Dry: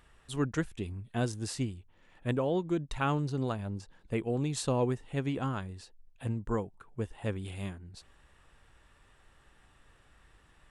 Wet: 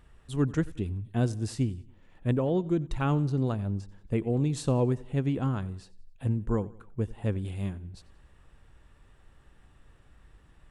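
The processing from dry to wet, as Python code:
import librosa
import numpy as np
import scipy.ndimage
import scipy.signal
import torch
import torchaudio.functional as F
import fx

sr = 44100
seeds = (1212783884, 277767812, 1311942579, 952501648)

y = fx.low_shelf(x, sr, hz=460.0, db=10.0)
y = fx.echo_feedback(y, sr, ms=91, feedback_pct=47, wet_db=-21.0)
y = y * 10.0 ** (-3.0 / 20.0)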